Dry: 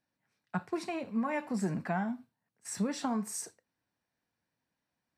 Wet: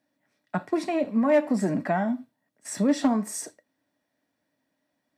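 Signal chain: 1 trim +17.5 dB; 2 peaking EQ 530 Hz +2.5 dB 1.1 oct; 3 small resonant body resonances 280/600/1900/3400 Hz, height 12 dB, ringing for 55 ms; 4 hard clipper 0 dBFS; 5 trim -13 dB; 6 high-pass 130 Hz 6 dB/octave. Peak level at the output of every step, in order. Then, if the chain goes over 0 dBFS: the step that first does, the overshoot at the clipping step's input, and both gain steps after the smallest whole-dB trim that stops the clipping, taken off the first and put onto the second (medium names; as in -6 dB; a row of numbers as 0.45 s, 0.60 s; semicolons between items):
-2.0 dBFS, -1.5 dBFS, +5.0 dBFS, 0.0 dBFS, -13.0 dBFS, -11.5 dBFS; step 3, 5.0 dB; step 1 +12.5 dB, step 5 -8 dB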